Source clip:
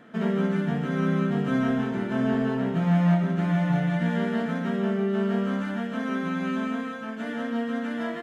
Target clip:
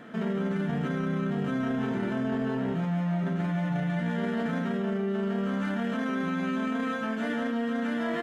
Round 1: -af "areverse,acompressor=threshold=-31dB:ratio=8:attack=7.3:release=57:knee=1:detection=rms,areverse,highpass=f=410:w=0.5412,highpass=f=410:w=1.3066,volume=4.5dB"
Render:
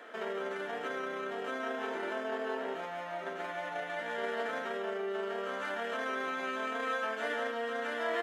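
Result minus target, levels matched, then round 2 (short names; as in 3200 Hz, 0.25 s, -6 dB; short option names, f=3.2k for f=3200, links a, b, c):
500 Hz band +4.5 dB
-af "areverse,acompressor=threshold=-31dB:ratio=8:attack=7.3:release=57:knee=1:detection=rms,areverse,volume=4.5dB"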